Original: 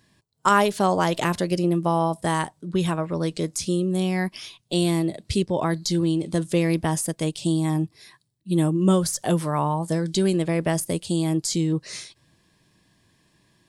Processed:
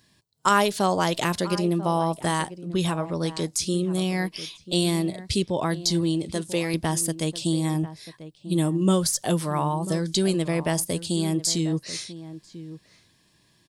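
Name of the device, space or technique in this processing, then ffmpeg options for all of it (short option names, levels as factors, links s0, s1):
presence and air boost: -filter_complex "[0:a]equalizer=f=4300:t=o:w=1.3:g=5,highshelf=f=9500:g=6.5,asettb=1/sr,asplit=3[s0][s1][s2];[s0]atrim=end=6.314[s3];[s1]atrim=start=6.31:end=6.74,asetpts=PTS-STARTPTS,afade=t=in:d=0.004:c=qsin,afade=t=out:st=0.426:d=0.004:c=qsin,lowshelf=f=180:g=-12[s4];[s2]atrim=start=6.736[s5];[s3][s4]acrossfade=d=0.004:c1=hsin:c2=qsin[s6];[s6][s5]acrossfade=d=0.004:c1=qsin:c2=hsin,asplit=2[s7][s8];[s8]adelay=991.3,volume=0.2,highshelf=f=4000:g=-22.3[s9];[s7][s9]amix=inputs=2:normalize=0,volume=0.794"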